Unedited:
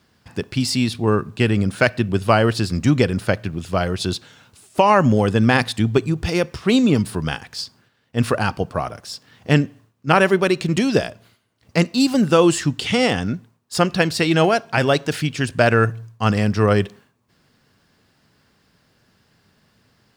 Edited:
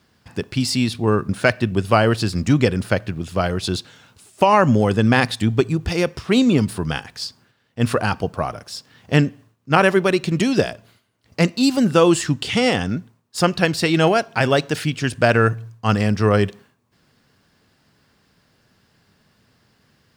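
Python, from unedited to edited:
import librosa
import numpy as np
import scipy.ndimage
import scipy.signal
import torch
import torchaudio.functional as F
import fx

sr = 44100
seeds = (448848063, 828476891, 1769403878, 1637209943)

y = fx.edit(x, sr, fx.cut(start_s=1.29, length_s=0.37), tone=tone)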